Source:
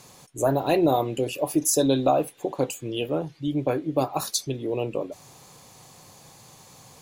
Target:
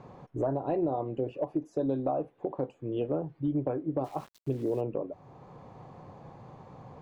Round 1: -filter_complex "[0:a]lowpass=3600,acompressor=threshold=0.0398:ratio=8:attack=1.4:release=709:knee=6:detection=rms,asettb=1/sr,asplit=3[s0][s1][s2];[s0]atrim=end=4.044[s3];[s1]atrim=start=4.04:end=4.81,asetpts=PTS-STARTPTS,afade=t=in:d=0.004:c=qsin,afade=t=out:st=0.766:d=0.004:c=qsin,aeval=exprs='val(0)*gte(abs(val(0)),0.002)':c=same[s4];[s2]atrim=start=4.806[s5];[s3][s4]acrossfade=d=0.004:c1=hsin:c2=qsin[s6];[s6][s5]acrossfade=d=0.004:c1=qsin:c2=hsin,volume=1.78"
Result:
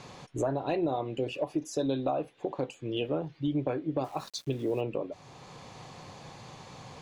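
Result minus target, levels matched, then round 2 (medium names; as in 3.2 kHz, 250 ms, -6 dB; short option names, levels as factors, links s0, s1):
4 kHz band +18.0 dB
-filter_complex "[0:a]lowpass=1000,acompressor=threshold=0.0398:ratio=8:attack=1.4:release=709:knee=6:detection=rms,asettb=1/sr,asplit=3[s0][s1][s2];[s0]atrim=end=4.044[s3];[s1]atrim=start=4.04:end=4.81,asetpts=PTS-STARTPTS,afade=t=in:d=0.004:c=qsin,afade=t=out:st=0.766:d=0.004:c=qsin,aeval=exprs='val(0)*gte(abs(val(0)),0.002)':c=same[s4];[s2]atrim=start=4.806[s5];[s3][s4]acrossfade=d=0.004:c1=hsin:c2=qsin[s6];[s6][s5]acrossfade=d=0.004:c1=qsin:c2=hsin,volume=1.78"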